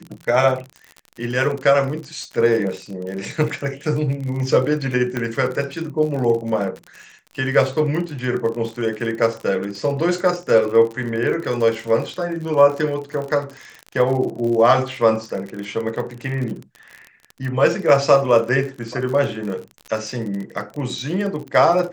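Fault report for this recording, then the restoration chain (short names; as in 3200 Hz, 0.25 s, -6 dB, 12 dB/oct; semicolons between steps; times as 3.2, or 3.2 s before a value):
crackle 46/s -27 dBFS
5.17 pop -10 dBFS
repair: de-click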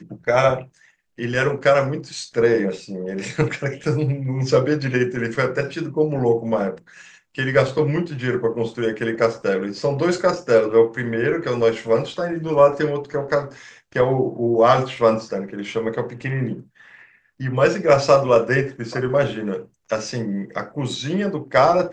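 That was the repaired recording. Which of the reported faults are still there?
none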